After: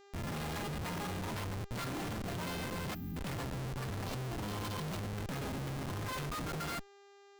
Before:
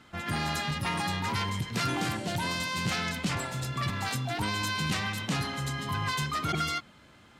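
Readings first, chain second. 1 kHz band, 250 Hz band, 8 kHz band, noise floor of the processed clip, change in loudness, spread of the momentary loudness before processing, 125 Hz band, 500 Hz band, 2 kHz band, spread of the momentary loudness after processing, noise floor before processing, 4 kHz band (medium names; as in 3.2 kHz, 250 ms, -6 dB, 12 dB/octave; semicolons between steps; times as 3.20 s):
-10.0 dB, -6.0 dB, -9.0 dB, -59 dBFS, -8.5 dB, 3 LU, -6.0 dB, -3.0 dB, -12.0 dB, 2 LU, -56 dBFS, -12.5 dB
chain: spectral selection erased 4.04–5.16 s, 1.1–2.7 kHz; Schmitt trigger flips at -31 dBFS; upward compressor, threshold -42 dBFS; time-frequency box 2.94–3.16 s, 340–12000 Hz -27 dB; mains buzz 400 Hz, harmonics 19, -53 dBFS -6 dB/octave; trim -6.5 dB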